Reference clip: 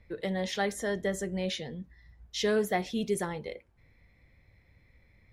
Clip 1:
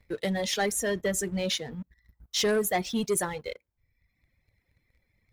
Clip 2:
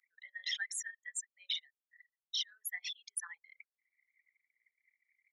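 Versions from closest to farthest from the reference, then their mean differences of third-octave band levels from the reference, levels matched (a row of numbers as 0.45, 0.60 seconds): 1, 2; 4.5, 16.0 decibels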